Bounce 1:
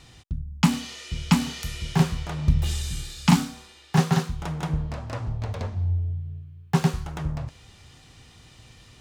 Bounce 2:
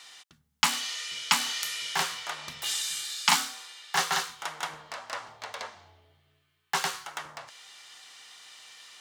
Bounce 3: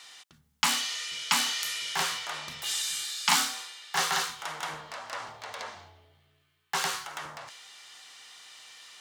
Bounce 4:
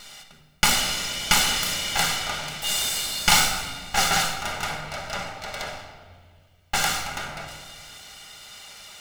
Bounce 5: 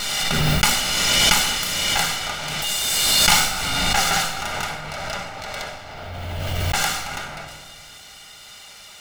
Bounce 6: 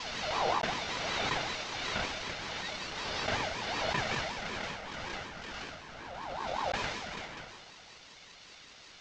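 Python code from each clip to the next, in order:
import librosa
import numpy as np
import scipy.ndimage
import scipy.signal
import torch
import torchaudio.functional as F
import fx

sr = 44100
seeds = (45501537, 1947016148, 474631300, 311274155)

y1 = scipy.signal.sosfilt(scipy.signal.butter(2, 1100.0, 'highpass', fs=sr, output='sos'), x)
y1 = fx.notch(y1, sr, hz=2500.0, q=16.0)
y1 = y1 * 10.0 ** (5.5 / 20.0)
y2 = fx.transient(y1, sr, attack_db=-3, sustain_db=5)
y3 = fx.lower_of_two(y2, sr, delay_ms=1.4)
y3 = fx.room_shoebox(y3, sr, seeds[0], volume_m3=1900.0, walls='mixed', distance_m=1.3)
y3 = y3 * 10.0 ** (6.5 / 20.0)
y4 = fx.pre_swell(y3, sr, db_per_s=20.0)
y4 = y4 * 10.0 ** (1.0 / 20.0)
y5 = fx.cvsd(y4, sr, bps=32000)
y5 = fx.ring_lfo(y5, sr, carrier_hz=810.0, swing_pct=25, hz=5.3)
y5 = y5 * 10.0 ** (-7.5 / 20.0)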